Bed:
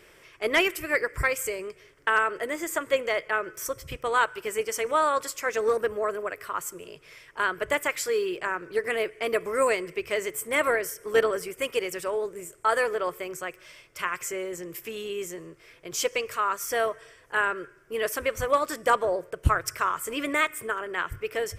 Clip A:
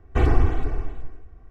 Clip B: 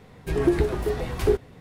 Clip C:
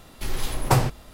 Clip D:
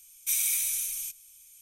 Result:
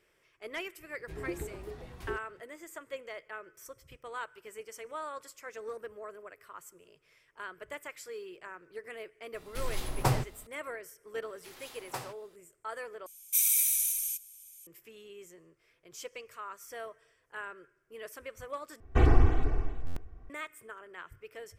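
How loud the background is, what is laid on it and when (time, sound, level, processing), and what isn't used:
bed −16.5 dB
0:00.81: mix in B −17.5 dB
0:09.34: mix in C −8 dB
0:11.23: mix in C −15 dB + high-pass filter 700 Hz 6 dB per octave
0:13.06: overwrite with D −5 dB + high-shelf EQ 9,200 Hz +11 dB
0:18.80: overwrite with A −3.5 dB + buffer that repeats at 0:01.06

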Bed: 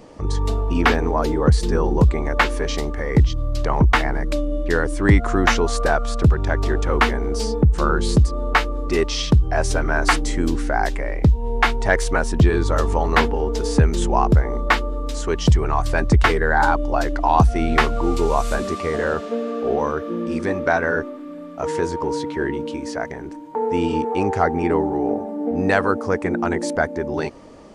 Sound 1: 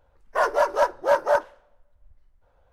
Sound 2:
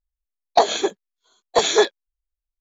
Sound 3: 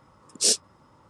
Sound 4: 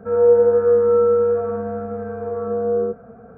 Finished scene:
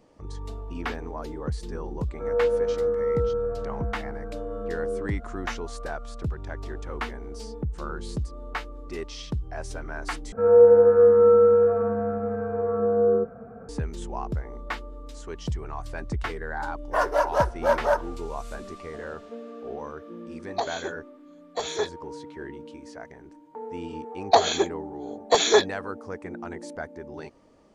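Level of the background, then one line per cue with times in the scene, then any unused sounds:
bed −15 dB
0:02.14: mix in 4 −10 dB
0:10.32: overwrite with 4 −0.5 dB
0:16.58: mix in 1 −2 dB
0:20.01: mix in 2 −13 dB
0:23.76: mix in 2 −2 dB
not used: 3

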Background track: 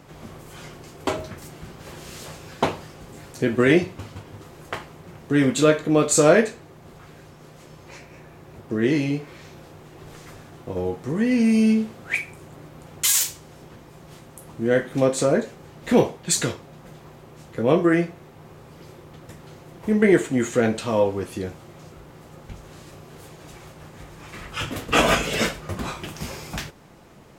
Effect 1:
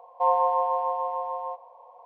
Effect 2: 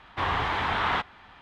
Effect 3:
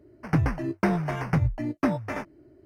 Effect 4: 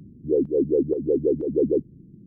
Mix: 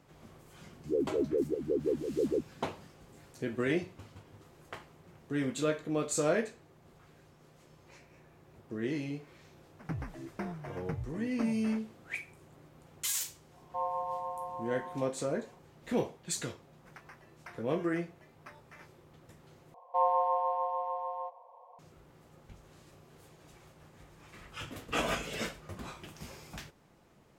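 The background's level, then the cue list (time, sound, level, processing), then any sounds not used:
background track −14 dB
0:00.61: mix in 4 −9.5 dB
0:09.56: mix in 3 −15 dB
0:13.54: mix in 1 −12.5 dB
0:16.63: mix in 3 −16.5 dB + high-pass filter 1,200 Hz
0:19.74: overwrite with 1 −5.5 dB
not used: 2

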